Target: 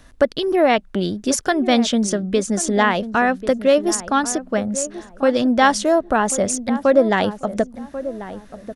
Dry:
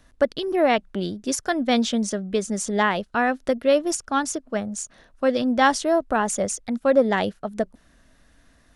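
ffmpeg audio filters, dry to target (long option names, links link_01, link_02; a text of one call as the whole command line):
ffmpeg -i in.wav -filter_complex "[0:a]asplit=2[link_01][link_02];[link_02]acompressor=threshold=-28dB:ratio=6,volume=1dB[link_03];[link_01][link_03]amix=inputs=2:normalize=0,asplit=2[link_04][link_05];[link_05]adelay=1090,lowpass=frequency=920:poles=1,volume=-12dB,asplit=2[link_06][link_07];[link_07]adelay=1090,lowpass=frequency=920:poles=1,volume=0.29,asplit=2[link_08][link_09];[link_09]adelay=1090,lowpass=frequency=920:poles=1,volume=0.29[link_10];[link_04][link_06][link_08][link_10]amix=inputs=4:normalize=0,volume=1.5dB" out.wav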